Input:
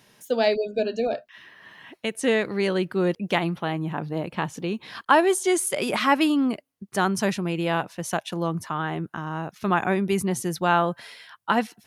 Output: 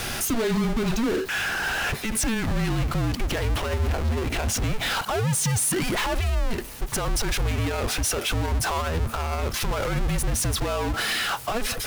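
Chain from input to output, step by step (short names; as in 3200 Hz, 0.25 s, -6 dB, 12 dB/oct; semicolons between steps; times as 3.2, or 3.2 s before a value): power-law curve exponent 0.35; frequency shift -230 Hz; limiter -11.5 dBFS, peak gain reduction 11 dB; gain -5.5 dB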